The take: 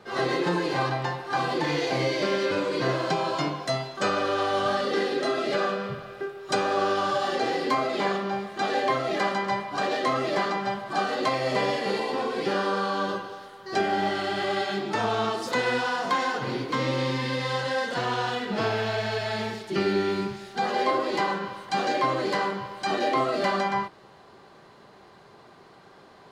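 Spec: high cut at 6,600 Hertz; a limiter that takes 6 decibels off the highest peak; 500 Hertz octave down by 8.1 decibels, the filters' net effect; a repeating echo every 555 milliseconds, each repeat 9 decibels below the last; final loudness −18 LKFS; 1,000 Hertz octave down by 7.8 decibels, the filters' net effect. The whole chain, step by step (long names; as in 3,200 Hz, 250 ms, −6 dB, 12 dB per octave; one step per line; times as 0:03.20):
low-pass filter 6,600 Hz
parametric band 500 Hz −9 dB
parametric band 1,000 Hz −7 dB
brickwall limiter −22.5 dBFS
repeating echo 555 ms, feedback 35%, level −9 dB
level +14 dB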